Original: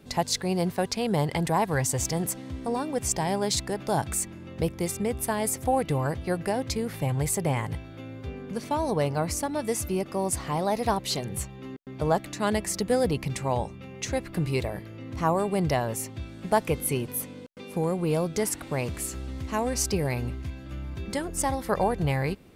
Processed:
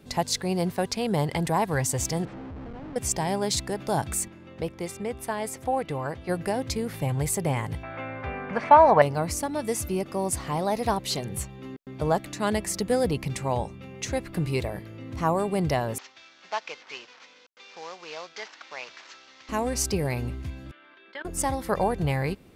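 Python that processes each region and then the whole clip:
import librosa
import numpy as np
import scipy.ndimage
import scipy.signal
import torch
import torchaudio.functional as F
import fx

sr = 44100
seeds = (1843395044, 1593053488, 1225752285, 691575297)

y = fx.chain(x, sr, fx.over_compress(threshold_db=-39.0, ratio=-1.0),
    fx.schmitt(flips_db=-44.0),
    fx.spacing_loss(db_at_10k=38), at=(2.25, 2.96))
y = fx.chain(y, sr, fx.lowpass(hz=3400.0, slope=6),
    fx.low_shelf(hz=300.0, db=-8.5), at=(4.28, 6.29))
y = fx.chain(y, sr, fx.lowpass(hz=4000.0, slope=12),
    fx.band_shelf(hz=1200.0, db=15.0, octaves=2.4), at=(7.83, 9.02))
y = fx.chain(y, sr, fx.cvsd(bps=32000),
    fx.highpass(hz=1100.0, slope=12), at=(15.98, 19.49))
y = fx.chain(y, sr, fx.cabinet(low_hz=430.0, low_slope=24, high_hz=3700.0, hz=(490.0, 770.0, 1600.0, 3300.0), db=(-10, -7, 8, 4)),
    fx.level_steps(step_db=18), at=(20.71, 21.25))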